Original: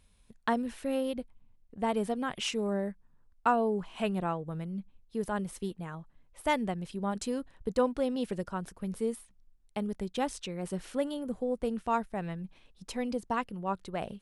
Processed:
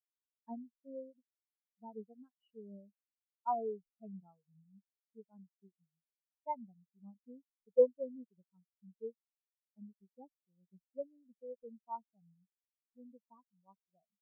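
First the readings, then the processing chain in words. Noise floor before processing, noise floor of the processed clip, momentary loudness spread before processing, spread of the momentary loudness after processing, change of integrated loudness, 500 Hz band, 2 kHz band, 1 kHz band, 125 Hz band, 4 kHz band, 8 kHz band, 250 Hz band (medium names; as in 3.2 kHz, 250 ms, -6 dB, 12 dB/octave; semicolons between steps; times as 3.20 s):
-64 dBFS, under -85 dBFS, 11 LU, 23 LU, -6.0 dB, -6.0 dB, under -35 dB, -11.0 dB, under -20 dB, under -40 dB, under -35 dB, -19.0 dB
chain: spectral contrast expander 4:1; trim -2 dB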